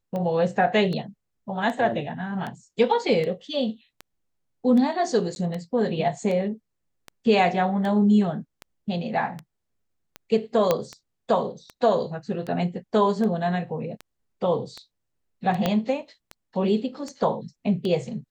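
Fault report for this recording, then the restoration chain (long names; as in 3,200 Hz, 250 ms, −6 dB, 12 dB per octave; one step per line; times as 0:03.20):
scratch tick 78 rpm −20 dBFS
0:05.35–0:05.36: drop-out 11 ms
0:10.71: click −7 dBFS
0:15.66: click −9 dBFS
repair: click removal
repair the gap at 0:05.35, 11 ms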